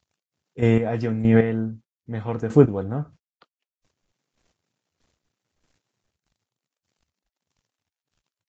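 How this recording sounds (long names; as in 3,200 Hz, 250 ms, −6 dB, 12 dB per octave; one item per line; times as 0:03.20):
a quantiser's noise floor 12 bits, dither none
chopped level 1.6 Hz, depth 65%, duty 25%
Ogg Vorbis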